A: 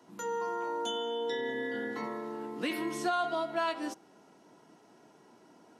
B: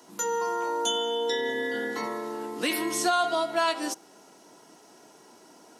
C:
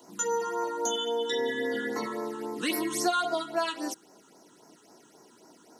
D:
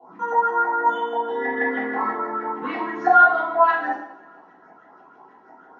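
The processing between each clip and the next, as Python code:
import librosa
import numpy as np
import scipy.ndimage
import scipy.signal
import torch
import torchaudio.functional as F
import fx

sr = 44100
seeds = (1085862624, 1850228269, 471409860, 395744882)

y1 = fx.bass_treble(x, sr, bass_db=-7, treble_db=10)
y1 = y1 * librosa.db_to_amplitude(6.0)
y2 = fx.rider(y1, sr, range_db=10, speed_s=2.0)
y2 = fx.dmg_crackle(y2, sr, seeds[0], per_s=280.0, level_db=-59.0)
y2 = fx.phaser_stages(y2, sr, stages=8, low_hz=630.0, high_hz=3400.0, hz=3.7, feedback_pct=5)
y3 = fx.filter_lfo_lowpass(y2, sr, shape='saw_up', hz=6.2, low_hz=720.0, high_hz=2000.0, q=7.9)
y3 = fx.brickwall_lowpass(y3, sr, high_hz=7000.0)
y3 = fx.rev_double_slope(y3, sr, seeds[1], early_s=0.64, late_s=2.5, knee_db=-25, drr_db=-8.5)
y3 = y3 * librosa.db_to_amplitude(-7.0)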